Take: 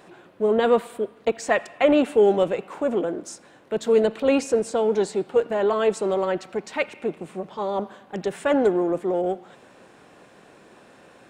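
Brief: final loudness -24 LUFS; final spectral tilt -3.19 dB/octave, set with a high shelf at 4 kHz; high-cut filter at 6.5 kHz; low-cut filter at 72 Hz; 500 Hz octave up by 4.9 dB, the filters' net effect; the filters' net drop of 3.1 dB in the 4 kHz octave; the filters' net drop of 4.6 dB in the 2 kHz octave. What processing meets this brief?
high-pass 72 Hz; low-pass 6.5 kHz; peaking EQ 500 Hz +6 dB; peaking EQ 2 kHz -6.5 dB; treble shelf 4 kHz +7.5 dB; peaking EQ 4 kHz -5.5 dB; trim -5 dB

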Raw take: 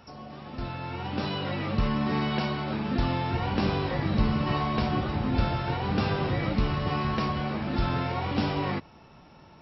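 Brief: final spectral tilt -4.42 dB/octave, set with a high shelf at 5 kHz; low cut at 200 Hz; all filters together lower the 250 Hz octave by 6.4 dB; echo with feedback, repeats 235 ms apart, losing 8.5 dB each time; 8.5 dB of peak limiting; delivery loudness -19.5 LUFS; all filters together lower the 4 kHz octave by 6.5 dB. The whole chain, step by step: high-pass 200 Hz; peaking EQ 250 Hz -5.5 dB; peaking EQ 4 kHz -7.5 dB; treble shelf 5 kHz -3.5 dB; peak limiter -25 dBFS; feedback delay 235 ms, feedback 38%, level -8.5 dB; trim +14.5 dB

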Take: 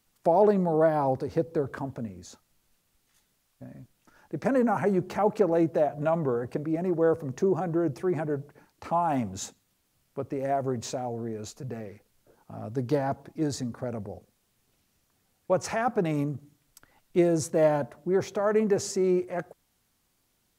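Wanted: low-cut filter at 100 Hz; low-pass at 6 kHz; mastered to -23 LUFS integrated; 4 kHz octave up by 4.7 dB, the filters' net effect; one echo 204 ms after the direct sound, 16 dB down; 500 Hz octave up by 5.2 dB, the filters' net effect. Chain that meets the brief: high-pass 100 Hz; low-pass 6 kHz; peaking EQ 500 Hz +6.5 dB; peaking EQ 4 kHz +7.5 dB; delay 204 ms -16 dB; trim +0.5 dB

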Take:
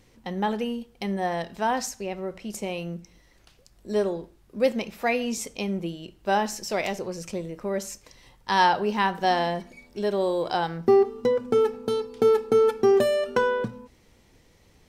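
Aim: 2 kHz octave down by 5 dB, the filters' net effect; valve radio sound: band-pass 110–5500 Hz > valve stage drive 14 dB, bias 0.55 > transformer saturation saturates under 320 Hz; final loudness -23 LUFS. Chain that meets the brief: band-pass 110–5500 Hz; peaking EQ 2 kHz -6.5 dB; valve stage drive 14 dB, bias 0.55; transformer saturation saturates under 320 Hz; trim +7.5 dB

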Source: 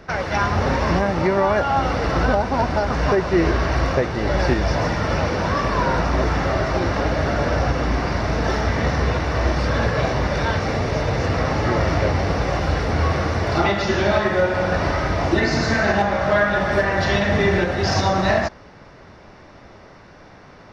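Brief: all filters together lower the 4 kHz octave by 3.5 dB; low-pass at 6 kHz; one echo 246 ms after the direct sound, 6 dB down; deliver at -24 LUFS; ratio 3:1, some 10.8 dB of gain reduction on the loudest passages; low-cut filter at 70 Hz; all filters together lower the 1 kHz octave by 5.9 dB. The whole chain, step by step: high-pass 70 Hz; low-pass 6 kHz; peaking EQ 1 kHz -8 dB; peaking EQ 4 kHz -3 dB; compression 3:1, threshold -30 dBFS; delay 246 ms -6 dB; trim +6 dB

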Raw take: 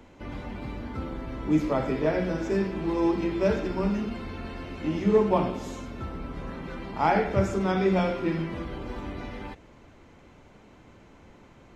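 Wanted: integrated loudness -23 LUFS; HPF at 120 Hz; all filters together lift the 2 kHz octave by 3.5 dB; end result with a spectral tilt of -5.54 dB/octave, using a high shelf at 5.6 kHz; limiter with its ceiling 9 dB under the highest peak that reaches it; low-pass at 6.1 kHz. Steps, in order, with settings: high-pass 120 Hz; low-pass 6.1 kHz; peaking EQ 2 kHz +4 dB; treble shelf 5.6 kHz +4.5 dB; trim +7.5 dB; peak limiter -11 dBFS

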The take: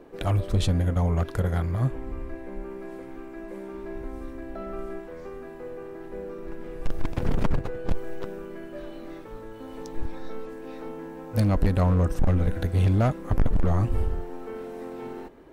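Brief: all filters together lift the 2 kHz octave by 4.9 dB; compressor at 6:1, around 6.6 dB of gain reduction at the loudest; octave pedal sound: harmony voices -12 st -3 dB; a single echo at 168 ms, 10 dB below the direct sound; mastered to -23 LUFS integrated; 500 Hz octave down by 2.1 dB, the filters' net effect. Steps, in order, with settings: peaking EQ 500 Hz -3 dB; peaking EQ 2 kHz +6.5 dB; compression 6:1, threshold -24 dBFS; delay 168 ms -10 dB; harmony voices -12 st -3 dB; trim +9.5 dB

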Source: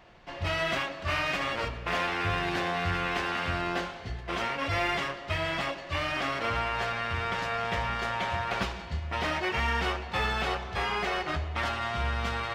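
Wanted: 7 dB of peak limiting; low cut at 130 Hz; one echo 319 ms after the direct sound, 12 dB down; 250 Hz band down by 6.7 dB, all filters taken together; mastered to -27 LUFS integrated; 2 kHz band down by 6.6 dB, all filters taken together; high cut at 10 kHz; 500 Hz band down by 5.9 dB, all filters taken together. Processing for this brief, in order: high-pass 130 Hz; low-pass 10 kHz; peaking EQ 250 Hz -7 dB; peaking EQ 500 Hz -6 dB; peaking EQ 2 kHz -8 dB; peak limiter -28.5 dBFS; delay 319 ms -12 dB; trim +10.5 dB

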